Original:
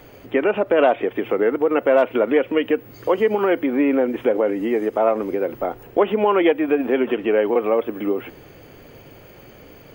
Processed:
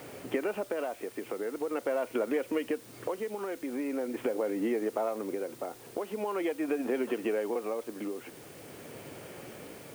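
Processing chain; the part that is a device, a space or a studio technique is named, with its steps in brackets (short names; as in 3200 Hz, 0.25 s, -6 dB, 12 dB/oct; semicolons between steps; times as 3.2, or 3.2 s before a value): medium wave at night (BPF 130–3500 Hz; compressor 5:1, threshold -28 dBFS, peak gain reduction 15 dB; tremolo 0.43 Hz, depth 52%; whine 9000 Hz -63 dBFS; white noise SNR 21 dB)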